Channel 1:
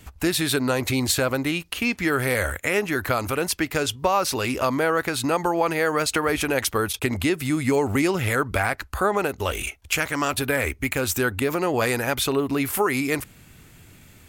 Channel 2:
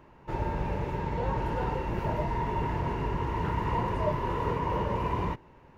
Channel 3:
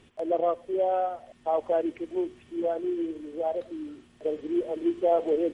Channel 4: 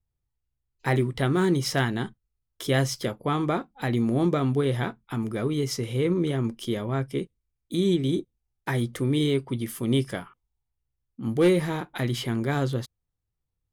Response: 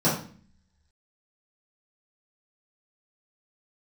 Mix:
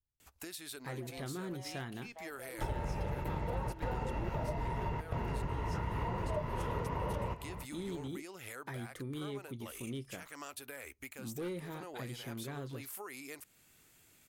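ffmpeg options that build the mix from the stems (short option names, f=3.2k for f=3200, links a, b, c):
-filter_complex "[0:a]bass=f=250:g=-10,treble=f=4k:g=6,alimiter=limit=-12dB:level=0:latency=1:release=395,adelay=200,volume=-15dB[a];[1:a]aecho=1:1:1.5:0.31,adelay=2300,volume=1dB[b];[2:a]alimiter=limit=-23.5dB:level=0:latency=1,asoftclip=type=tanh:threshold=-33.5dB,adelay=700,volume=-7.5dB[c];[3:a]dynaudnorm=f=110:g=17:m=4dB,volume=-11.5dB,asplit=2[d][e];[e]apad=whole_len=356305[f];[b][f]sidechaingate=range=-16dB:threshold=-49dB:ratio=16:detection=peak[g];[a][c][d]amix=inputs=3:normalize=0,asoftclip=type=hard:threshold=-23.5dB,acompressor=threshold=-47dB:ratio=2,volume=0dB[h];[g][h]amix=inputs=2:normalize=0,acompressor=threshold=-33dB:ratio=6"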